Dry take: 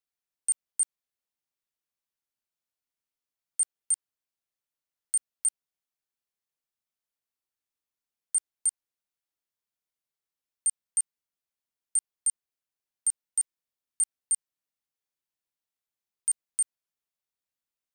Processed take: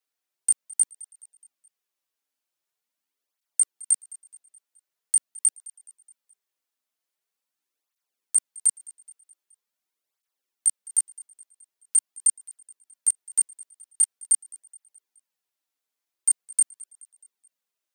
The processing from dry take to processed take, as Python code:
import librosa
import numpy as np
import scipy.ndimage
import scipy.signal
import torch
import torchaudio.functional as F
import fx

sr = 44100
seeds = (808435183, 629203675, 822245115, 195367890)

p1 = scipy.signal.sosfilt(scipy.signal.butter(2, 250.0, 'highpass', fs=sr, output='sos'), x)
p2 = p1 + fx.echo_feedback(p1, sr, ms=212, feedback_pct=52, wet_db=-22, dry=0)
p3 = fx.flanger_cancel(p2, sr, hz=0.44, depth_ms=5.9)
y = F.gain(torch.from_numpy(p3), 8.5).numpy()